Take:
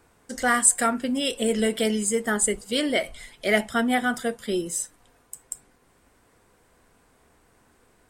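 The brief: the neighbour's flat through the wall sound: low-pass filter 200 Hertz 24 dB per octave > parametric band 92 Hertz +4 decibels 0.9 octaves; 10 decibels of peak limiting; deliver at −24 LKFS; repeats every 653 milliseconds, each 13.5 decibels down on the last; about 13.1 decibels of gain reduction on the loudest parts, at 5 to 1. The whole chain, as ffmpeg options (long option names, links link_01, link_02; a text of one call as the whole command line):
ffmpeg -i in.wav -af "acompressor=threshold=-28dB:ratio=5,alimiter=limit=-24dB:level=0:latency=1,lowpass=frequency=200:width=0.5412,lowpass=frequency=200:width=1.3066,equalizer=frequency=92:width_type=o:width=0.9:gain=4,aecho=1:1:653|1306:0.211|0.0444,volume=20.5dB" out.wav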